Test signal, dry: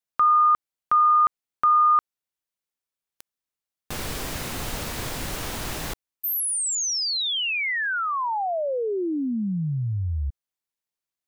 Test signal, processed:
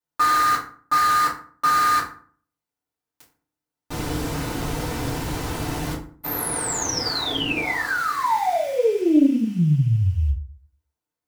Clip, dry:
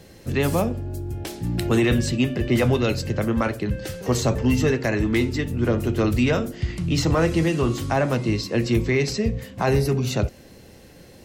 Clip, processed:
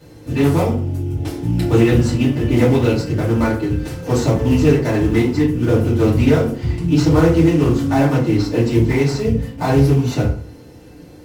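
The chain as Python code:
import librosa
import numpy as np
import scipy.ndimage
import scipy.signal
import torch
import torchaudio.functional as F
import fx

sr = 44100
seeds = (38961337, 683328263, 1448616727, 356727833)

p1 = fx.sample_hold(x, sr, seeds[0], rate_hz=2900.0, jitter_pct=20)
p2 = x + (p1 * 10.0 ** (-6.5 / 20.0))
p3 = fx.rev_fdn(p2, sr, rt60_s=0.47, lf_ratio=1.25, hf_ratio=0.6, size_ms=20.0, drr_db=-9.0)
p4 = fx.doppler_dist(p3, sr, depth_ms=0.14)
y = p4 * 10.0 ** (-8.5 / 20.0)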